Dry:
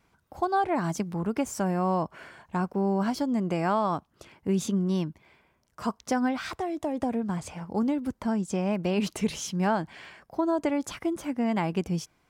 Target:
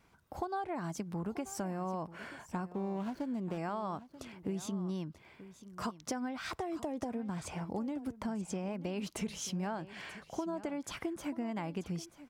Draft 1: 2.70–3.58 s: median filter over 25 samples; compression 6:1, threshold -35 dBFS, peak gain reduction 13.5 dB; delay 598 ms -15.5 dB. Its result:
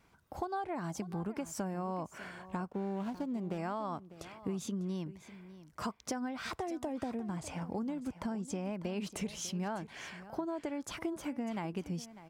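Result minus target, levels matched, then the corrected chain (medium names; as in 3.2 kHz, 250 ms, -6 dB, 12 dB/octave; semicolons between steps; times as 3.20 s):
echo 337 ms early
2.70–3.58 s: median filter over 25 samples; compression 6:1, threshold -35 dBFS, peak gain reduction 13.5 dB; delay 935 ms -15.5 dB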